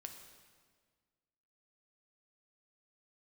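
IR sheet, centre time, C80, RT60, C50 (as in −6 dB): 32 ms, 8.0 dB, 1.7 s, 6.5 dB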